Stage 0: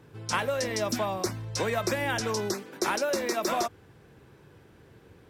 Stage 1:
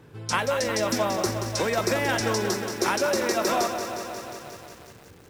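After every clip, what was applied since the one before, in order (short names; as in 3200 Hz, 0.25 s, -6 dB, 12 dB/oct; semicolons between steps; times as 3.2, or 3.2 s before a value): lo-fi delay 0.179 s, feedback 80%, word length 8-bit, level -8 dB; gain +3 dB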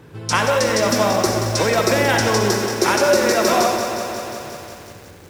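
reverb RT60 0.70 s, pre-delay 52 ms, DRR 4.5 dB; gain +6.5 dB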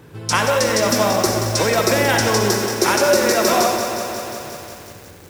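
high shelf 8300 Hz +6.5 dB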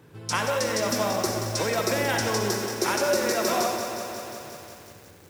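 HPF 62 Hz; gain -8.5 dB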